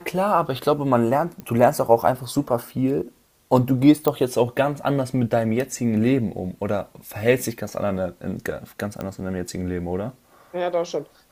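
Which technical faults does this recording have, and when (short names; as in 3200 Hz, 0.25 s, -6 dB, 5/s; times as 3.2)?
1.4 pop -21 dBFS
4.08 pop -8 dBFS
9.01 pop -16 dBFS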